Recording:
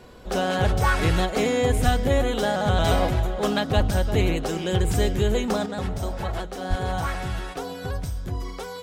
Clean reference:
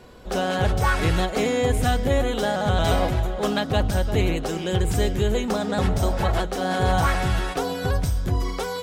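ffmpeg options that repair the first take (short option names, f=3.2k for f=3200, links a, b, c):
-filter_complex "[0:a]asplit=3[a][b][c];[a]afade=t=out:st=1.84:d=0.02[d];[b]highpass=f=140:w=0.5412,highpass=f=140:w=1.3066,afade=t=in:st=1.84:d=0.02,afade=t=out:st=1.96:d=0.02[e];[c]afade=t=in:st=1.96:d=0.02[f];[d][e][f]amix=inputs=3:normalize=0,asplit=3[g][h][i];[g]afade=t=out:st=3.76:d=0.02[j];[h]highpass=f=140:w=0.5412,highpass=f=140:w=1.3066,afade=t=in:st=3.76:d=0.02,afade=t=out:st=3.88:d=0.02[k];[i]afade=t=in:st=3.88:d=0.02[l];[j][k][l]amix=inputs=3:normalize=0,asplit=3[m][n][o];[m]afade=t=out:st=6.69:d=0.02[p];[n]highpass=f=140:w=0.5412,highpass=f=140:w=1.3066,afade=t=in:st=6.69:d=0.02,afade=t=out:st=6.81:d=0.02[q];[o]afade=t=in:st=6.81:d=0.02[r];[p][q][r]amix=inputs=3:normalize=0,asetnsamples=n=441:p=0,asendcmd='5.66 volume volume 6.5dB',volume=0dB"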